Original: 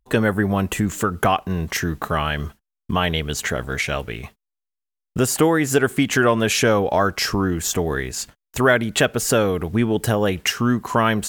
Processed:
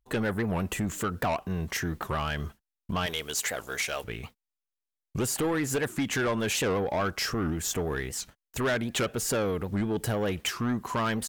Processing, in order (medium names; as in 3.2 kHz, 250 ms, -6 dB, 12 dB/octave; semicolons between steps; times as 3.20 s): 3.06–4.04 s: tone controls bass -15 dB, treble +8 dB; saturation -16.5 dBFS, distortion -11 dB; warped record 78 rpm, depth 250 cents; trim -6 dB